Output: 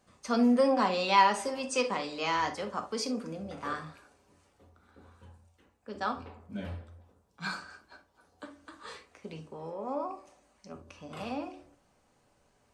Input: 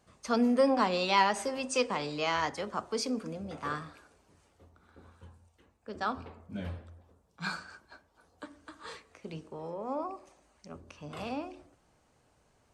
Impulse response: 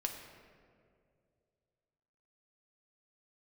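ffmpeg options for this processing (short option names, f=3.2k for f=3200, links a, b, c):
-filter_complex "[0:a]bandreject=f=50:t=h:w=6,bandreject=f=100:t=h:w=6,bandreject=f=150:t=h:w=6[a];[1:a]atrim=start_sample=2205,atrim=end_sample=3528[b];[a][b]afir=irnorm=-1:irlink=0"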